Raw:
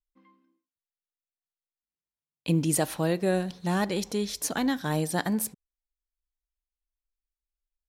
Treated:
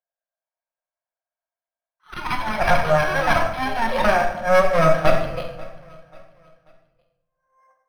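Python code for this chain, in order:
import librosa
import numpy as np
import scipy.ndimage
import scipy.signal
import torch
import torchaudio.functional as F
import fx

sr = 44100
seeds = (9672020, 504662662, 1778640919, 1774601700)

y = x[::-1].copy()
y = fx.env_lowpass(y, sr, base_hz=1300.0, full_db=-22.0)
y = scipy.signal.sosfilt(scipy.signal.ellip(4, 1.0, 40, 510.0, 'highpass', fs=sr, output='sos'), y)
y = fx.small_body(y, sr, hz=(670.0, 1600.0), ring_ms=30, db=16)
y = fx.cheby_harmonics(y, sr, harmonics=(5, 6), levels_db=(-12, -6), full_scale_db=-7.0)
y = fx.echo_pitch(y, sr, ms=413, semitones=6, count=2, db_per_echo=-6.0)
y = fx.air_absorb(y, sr, metres=120.0)
y = fx.echo_feedback(y, sr, ms=538, feedback_pct=40, wet_db=-22.0)
y = fx.room_shoebox(y, sr, seeds[0], volume_m3=260.0, walls='mixed', distance_m=0.98)
y = np.interp(np.arange(len(y)), np.arange(len(y))[::6], y[::6])
y = y * librosa.db_to_amplitude(-3.0)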